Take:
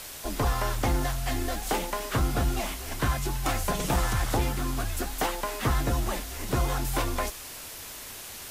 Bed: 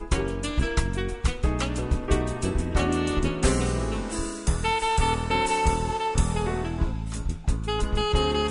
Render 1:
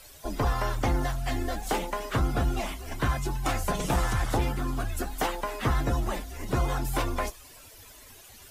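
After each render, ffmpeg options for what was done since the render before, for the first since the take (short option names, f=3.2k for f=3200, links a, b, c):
-af "afftdn=nr=13:nf=-41"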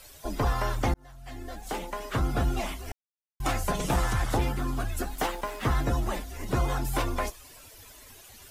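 -filter_complex "[0:a]asettb=1/sr,asplit=3[a][b][c];[a]atrim=end=5.154[d];[b]atrim=start=5.15:end=5.71,asetpts=PTS-STARTPTS,afade=t=in:d=0.004:c=qsin,afade=t=out:st=0.556:d=0.004:c=qsin,aeval=exprs='sgn(val(0))*max(abs(val(0))-0.00501,0)':c=same[e];[c]atrim=start=5.706[f];[d][e]acrossfade=d=0.004:c1=hsin:c2=qsin[g];[g][f]acrossfade=d=0.004:c1=qsin:c2=hsin,asplit=4[h][i][j][k];[h]atrim=end=0.94,asetpts=PTS-STARTPTS,afade=t=out:st=0.936:d=0.004:c=hsin[l];[i]atrim=start=0.94:end=2.92,asetpts=PTS-STARTPTS,afade=t=in:d=1.47,afade=t=out:st=1.976:d=0.004:c=hsin[m];[j]atrim=start=2.92:end=3.4,asetpts=PTS-STARTPTS,volume=0[n];[k]atrim=start=3.4,asetpts=PTS-STARTPTS,afade=t=in:d=0.004:c=hsin[o];[l][m][n][o]concat=n=4:v=0:a=1"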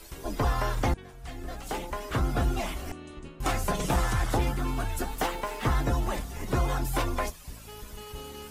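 -filter_complex "[1:a]volume=-18.5dB[a];[0:a][a]amix=inputs=2:normalize=0"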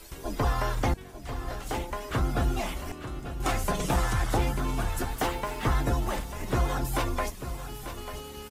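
-af "aecho=1:1:893:0.282"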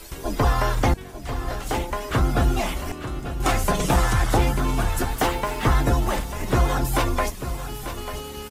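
-af "volume=6.5dB"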